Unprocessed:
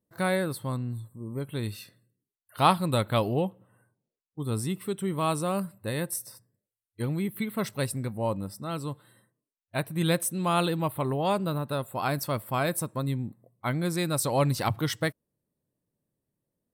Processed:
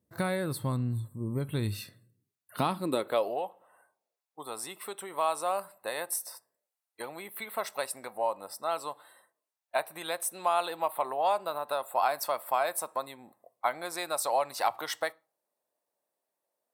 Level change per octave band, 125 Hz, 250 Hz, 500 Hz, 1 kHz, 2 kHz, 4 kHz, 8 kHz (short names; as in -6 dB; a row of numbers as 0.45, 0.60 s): -8.5, -9.5, -2.0, 0.0, -3.0, -4.0, -2.0 dB